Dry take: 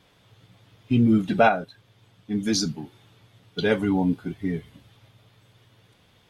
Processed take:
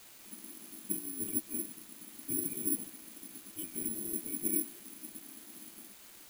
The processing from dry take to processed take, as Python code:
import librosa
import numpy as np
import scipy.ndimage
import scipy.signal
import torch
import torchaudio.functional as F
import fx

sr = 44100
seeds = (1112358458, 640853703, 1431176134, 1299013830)

y = fx.octave_divider(x, sr, octaves=2, level_db=-2.0)
y = fx.spec_gate(y, sr, threshold_db=-15, keep='weak')
y = fx.high_shelf(y, sr, hz=2400.0, db=-10.0)
y = fx.over_compress(y, sr, threshold_db=-42.0, ratio=-0.5)
y = 10.0 ** (-38.5 / 20.0) * np.tanh(y / 10.0 ** (-38.5 / 20.0))
y = fx.formant_cascade(y, sr, vowel='i')
y = fx.small_body(y, sr, hz=(210.0, 320.0, 2400.0), ring_ms=50, db=13)
y = fx.quant_dither(y, sr, seeds[0], bits=10, dither='triangular')
y = (np.kron(scipy.signal.resample_poly(y, 1, 4), np.eye(4)[0]) * 4)[:len(y)]
y = F.gain(torch.from_numpy(y), 5.5).numpy()